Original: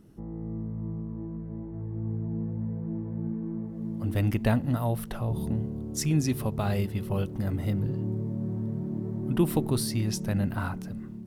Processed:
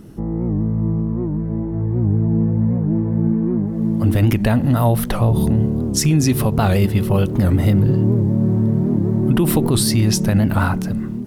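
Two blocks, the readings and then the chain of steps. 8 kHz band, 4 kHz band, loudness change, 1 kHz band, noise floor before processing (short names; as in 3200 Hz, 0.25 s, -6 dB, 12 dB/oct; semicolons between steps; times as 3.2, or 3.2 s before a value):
+13.0 dB, +13.0 dB, +12.5 dB, +12.0 dB, -39 dBFS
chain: maximiser +21 dB; record warp 78 rpm, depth 160 cents; gain -6 dB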